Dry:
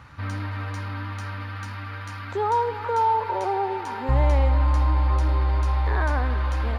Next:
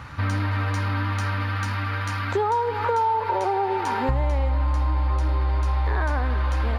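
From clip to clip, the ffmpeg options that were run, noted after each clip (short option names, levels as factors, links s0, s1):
-af "acompressor=threshold=0.0398:ratio=6,volume=2.51"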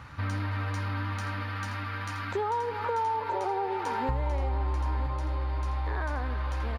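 -af "aecho=1:1:973:0.316,volume=0.447"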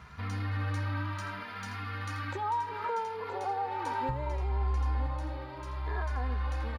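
-filter_complex "[0:a]asplit=2[s0][s1];[s1]adelay=2.5,afreqshift=0.67[s2];[s0][s2]amix=inputs=2:normalize=1"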